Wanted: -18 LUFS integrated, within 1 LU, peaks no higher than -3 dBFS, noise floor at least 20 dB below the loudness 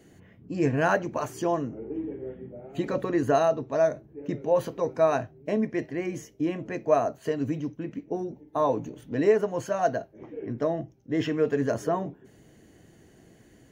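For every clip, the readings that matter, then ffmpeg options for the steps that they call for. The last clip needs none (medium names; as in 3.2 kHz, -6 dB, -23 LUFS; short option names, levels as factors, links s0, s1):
loudness -28.0 LUFS; peak level -10.0 dBFS; loudness target -18.0 LUFS
-> -af "volume=3.16,alimiter=limit=0.708:level=0:latency=1"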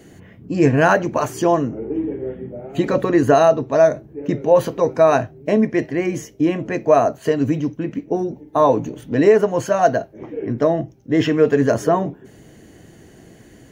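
loudness -18.5 LUFS; peak level -3.0 dBFS; noise floor -47 dBFS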